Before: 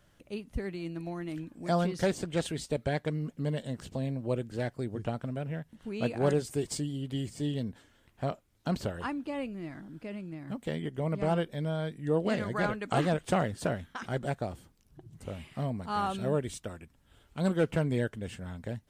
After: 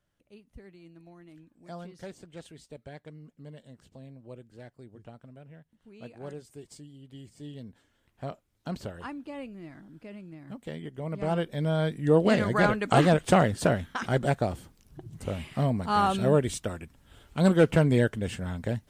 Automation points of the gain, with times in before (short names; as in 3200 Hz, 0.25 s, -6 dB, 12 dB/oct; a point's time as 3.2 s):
6.97 s -14 dB
8.29 s -4 dB
11 s -4 dB
11.82 s +7 dB